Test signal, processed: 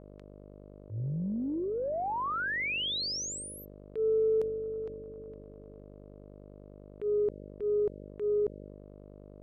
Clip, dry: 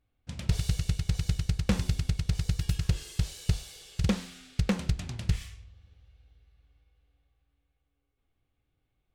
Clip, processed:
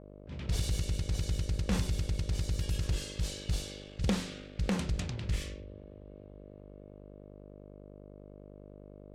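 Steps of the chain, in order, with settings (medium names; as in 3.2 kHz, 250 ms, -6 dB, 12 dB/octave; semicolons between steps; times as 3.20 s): mains buzz 50 Hz, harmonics 12, -49 dBFS -1 dB/octave; level-controlled noise filter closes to 1.9 kHz, open at -24 dBFS; transient shaper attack -9 dB, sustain +3 dB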